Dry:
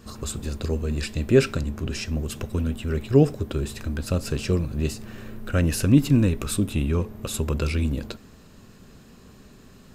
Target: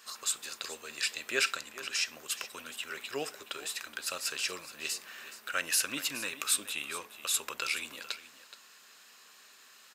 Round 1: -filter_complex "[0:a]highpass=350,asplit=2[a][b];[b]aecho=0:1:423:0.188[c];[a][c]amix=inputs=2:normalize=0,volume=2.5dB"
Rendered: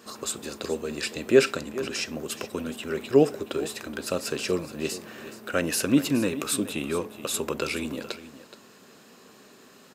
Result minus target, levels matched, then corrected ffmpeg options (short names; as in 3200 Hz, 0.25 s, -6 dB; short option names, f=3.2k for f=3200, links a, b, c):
250 Hz band +16.0 dB
-filter_complex "[0:a]highpass=1.4k,asplit=2[a][b];[b]aecho=0:1:423:0.188[c];[a][c]amix=inputs=2:normalize=0,volume=2.5dB"